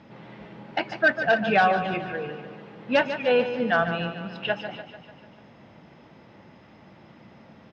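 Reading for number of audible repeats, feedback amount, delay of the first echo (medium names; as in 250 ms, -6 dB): 5, 56%, 147 ms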